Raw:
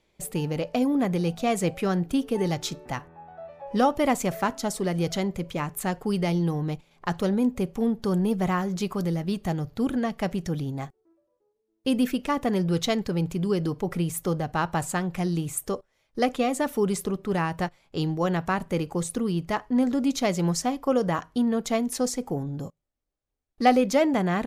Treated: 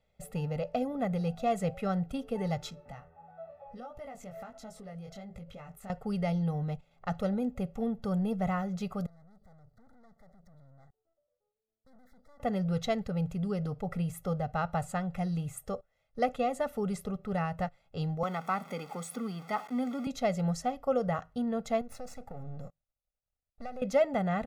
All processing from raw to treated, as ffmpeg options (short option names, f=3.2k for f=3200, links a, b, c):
-filter_complex "[0:a]asettb=1/sr,asplit=3[a][b][c];[a]atrim=end=2.704[d];[b]atrim=start=2.7:end=5.9,asetpts=PTS-STARTPTS,afade=t=in:d=0.004:c=qsin,afade=t=out:st=3.196:d=0.004:c=qsin,flanger=delay=18:depth=4.7:speed=1.5,acompressor=threshold=-36dB:ratio=6:attack=3.2:release=140:knee=1:detection=peak[e];[c]atrim=start=5.896[f];[d][e]acrossfade=d=0.004:c1=hsin:c2=qsin[g];[g][f]acrossfade=d=0.004:c1=qsin:c2=hsin,asettb=1/sr,asplit=3[h][i][j];[h]atrim=end=9.064[k];[i]atrim=start=9.06:end=12.4,asetpts=PTS-STARTPTS,afade=t=in:d=0.004:c=qsin,afade=t=out:st=3.336:d=0.004:c=qsin,acompressor=threshold=-45dB:ratio=2.5:attack=3.2:release=140:knee=1:detection=peak,aeval=exprs='(tanh(398*val(0)+0.8)-tanh(0.8))/398':c=same,asuperstop=centerf=2700:order=12:qfactor=1.9[l];[j]atrim=start=12.396[m];[k][l]acrossfade=d=0.004:c1=hsin:c2=qsin[n];[n][m]acrossfade=d=0.004:c1=qsin:c2=hsin,asettb=1/sr,asplit=3[o][p][q];[o]atrim=end=18.234[r];[p]atrim=start=18.23:end=20.07,asetpts=PTS-STARTPTS,afade=t=in:d=0.004:c=qsin,afade=t=out:st=1.836:d=0.004:c=qsin,aeval=exprs='val(0)+0.5*0.0188*sgn(val(0))':c=same,highpass=f=240:w=0.5412,highpass=f=240:w=1.3066,aecho=1:1:0.9:0.54,atrim=end_sample=81144[s];[q]atrim=start=20.066[t];[r][s]acrossfade=d=0.004:c1=hsin:c2=qsin[u];[u][t]acrossfade=d=0.004:c1=qsin:c2=hsin,asettb=1/sr,asplit=3[v][w][x];[v]atrim=end=21.814[y];[w]atrim=start=21.81:end=23.82,asetpts=PTS-STARTPTS,afade=t=in:d=0.004:c=qsin,afade=t=out:st=2.006:d=0.004:c=qsin,aeval=exprs='if(lt(val(0),0),0.251*val(0),val(0))':c=same,acompressor=threshold=-31dB:ratio=10:attack=3.2:release=140:knee=1:detection=peak,asuperstop=centerf=3100:order=12:qfactor=7.8[z];[x]atrim=start=23.816[aa];[y][z]acrossfade=d=0.004:c1=hsin:c2=qsin[ab];[ab][aa]acrossfade=d=0.004:c1=qsin:c2=hsin,highshelf=f=2.9k:g=-10.5,aecho=1:1:1.5:0.88,volume=-7dB"